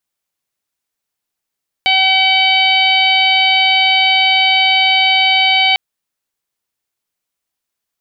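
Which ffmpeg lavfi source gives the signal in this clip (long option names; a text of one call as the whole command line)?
ffmpeg -f lavfi -i "aevalsrc='0.158*sin(2*PI*762*t)+0.0282*sin(2*PI*1524*t)+0.224*sin(2*PI*2286*t)+0.211*sin(2*PI*3048*t)+0.1*sin(2*PI*3810*t)+0.075*sin(2*PI*4572*t)':duration=3.9:sample_rate=44100" out.wav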